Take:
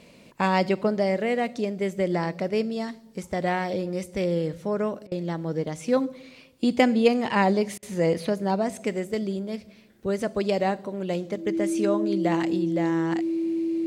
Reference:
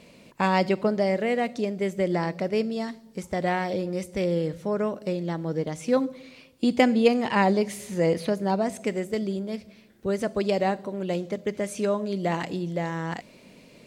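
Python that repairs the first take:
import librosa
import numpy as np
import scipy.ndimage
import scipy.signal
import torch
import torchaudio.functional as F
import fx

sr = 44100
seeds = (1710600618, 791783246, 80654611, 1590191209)

y = fx.notch(x, sr, hz=330.0, q=30.0)
y = fx.fix_interpolate(y, sr, at_s=(5.07, 7.78), length_ms=45.0)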